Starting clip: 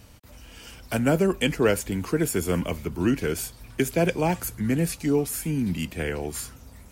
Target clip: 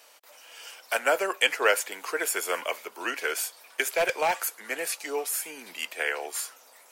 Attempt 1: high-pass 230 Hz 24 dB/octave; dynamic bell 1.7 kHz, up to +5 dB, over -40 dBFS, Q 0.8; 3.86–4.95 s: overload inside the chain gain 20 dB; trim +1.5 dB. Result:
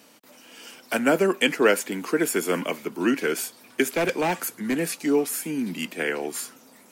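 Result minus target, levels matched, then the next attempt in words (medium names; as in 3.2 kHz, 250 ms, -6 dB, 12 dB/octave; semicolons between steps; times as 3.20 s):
250 Hz band +16.0 dB
high-pass 540 Hz 24 dB/octave; dynamic bell 1.7 kHz, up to +5 dB, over -40 dBFS, Q 0.8; 3.86–4.95 s: overload inside the chain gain 20 dB; trim +1.5 dB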